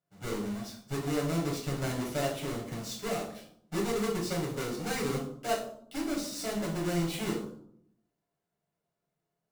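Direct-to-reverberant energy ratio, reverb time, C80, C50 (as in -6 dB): -4.0 dB, 0.65 s, 10.0 dB, 6.0 dB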